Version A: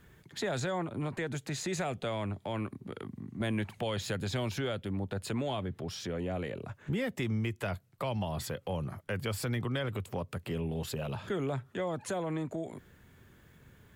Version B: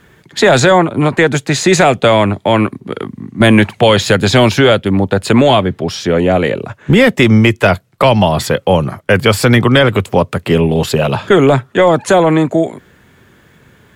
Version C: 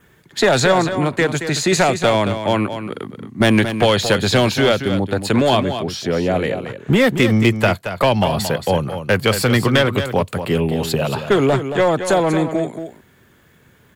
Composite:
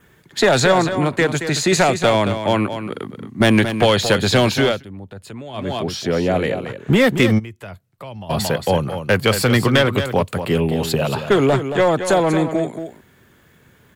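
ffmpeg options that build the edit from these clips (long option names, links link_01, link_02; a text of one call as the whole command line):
ffmpeg -i take0.wav -i take1.wav -i take2.wav -filter_complex "[0:a]asplit=2[link_01][link_02];[2:a]asplit=3[link_03][link_04][link_05];[link_03]atrim=end=4.85,asetpts=PTS-STARTPTS[link_06];[link_01]atrim=start=4.61:end=5.77,asetpts=PTS-STARTPTS[link_07];[link_04]atrim=start=5.53:end=7.4,asetpts=PTS-STARTPTS[link_08];[link_02]atrim=start=7.38:end=8.31,asetpts=PTS-STARTPTS[link_09];[link_05]atrim=start=8.29,asetpts=PTS-STARTPTS[link_10];[link_06][link_07]acrossfade=duration=0.24:curve1=tri:curve2=tri[link_11];[link_11][link_08]acrossfade=duration=0.24:curve1=tri:curve2=tri[link_12];[link_12][link_09]acrossfade=duration=0.02:curve1=tri:curve2=tri[link_13];[link_13][link_10]acrossfade=duration=0.02:curve1=tri:curve2=tri" out.wav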